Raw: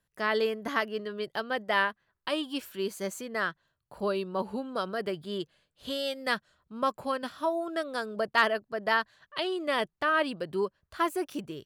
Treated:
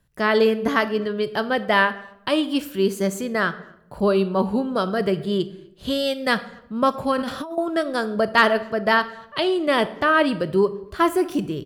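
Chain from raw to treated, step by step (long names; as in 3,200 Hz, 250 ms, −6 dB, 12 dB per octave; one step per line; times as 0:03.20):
low-shelf EQ 290 Hz +10.5 dB
far-end echo of a speakerphone 250 ms, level −29 dB
convolution reverb RT60 0.80 s, pre-delay 20 ms, DRR 12.5 dB
0:07.18–0:07.58: compressor whose output falls as the input rises −36 dBFS, ratio −1
level +7 dB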